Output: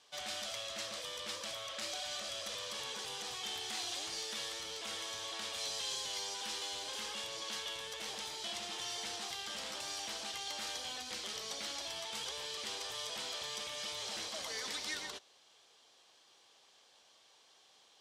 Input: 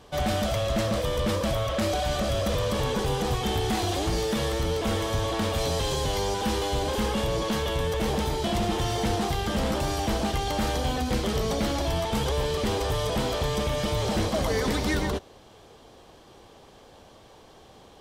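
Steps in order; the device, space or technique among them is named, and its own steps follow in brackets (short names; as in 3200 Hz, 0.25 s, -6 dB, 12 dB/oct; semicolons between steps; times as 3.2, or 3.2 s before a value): piezo pickup straight into a mixer (LPF 5700 Hz 12 dB/oct; differentiator); gain +1 dB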